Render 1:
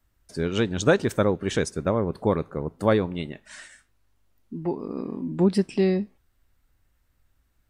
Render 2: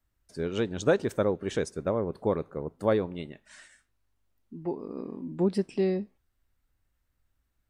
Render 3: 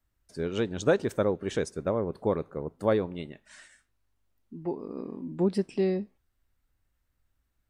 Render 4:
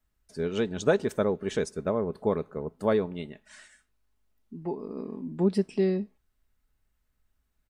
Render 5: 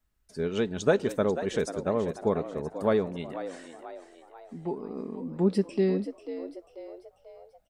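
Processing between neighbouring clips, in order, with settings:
dynamic equaliser 500 Hz, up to +5 dB, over −34 dBFS, Q 0.81; level −8 dB
no processing that can be heard
comb filter 4.7 ms, depth 35%
echo with shifted repeats 490 ms, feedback 46%, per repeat +80 Hz, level −12 dB

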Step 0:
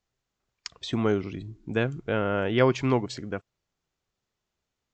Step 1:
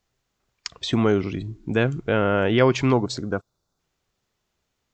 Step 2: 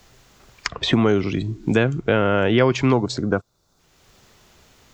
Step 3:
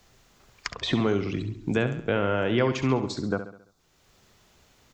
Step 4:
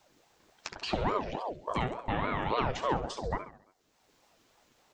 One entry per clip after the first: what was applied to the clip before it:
gain on a spectral selection 0:02.93–0:03.79, 1,600–3,400 Hz −12 dB; in parallel at +2 dB: brickwall limiter −20 dBFS, peak gain reduction 10.5 dB
multiband upward and downward compressor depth 70%; level +2 dB
repeating echo 68 ms, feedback 47%, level −10.5 dB; level −7 dB
flanger 0.9 Hz, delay 3.9 ms, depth 9.5 ms, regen +26%; ring modulator whose carrier an LFO sweeps 550 Hz, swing 55%, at 3.5 Hz

